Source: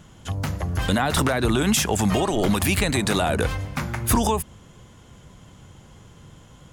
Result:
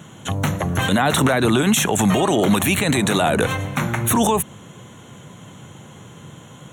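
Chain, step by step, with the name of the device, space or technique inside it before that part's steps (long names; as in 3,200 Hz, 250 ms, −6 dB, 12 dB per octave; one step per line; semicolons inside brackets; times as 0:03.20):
PA system with an anti-feedback notch (high-pass filter 110 Hz 24 dB per octave; Butterworth band-reject 4,900 Hz, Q 3.2; brickwall limiter −17 dBFS, peak gain reduction 8 dB)
level +8.5 dB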